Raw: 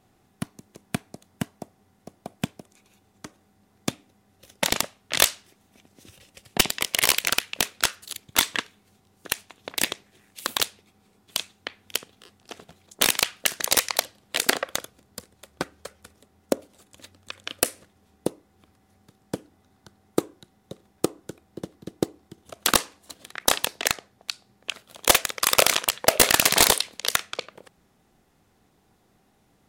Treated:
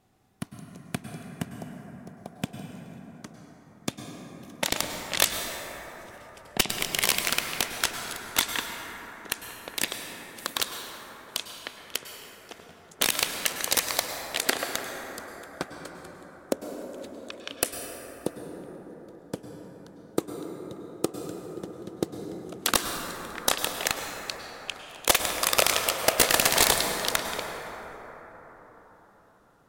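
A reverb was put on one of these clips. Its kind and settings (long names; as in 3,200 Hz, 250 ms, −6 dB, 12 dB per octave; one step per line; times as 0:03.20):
dense smooth reverb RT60 4.9 s, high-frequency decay 0.3×, pre-delay 90 ms, DRR 3.5 dB
level −4 dB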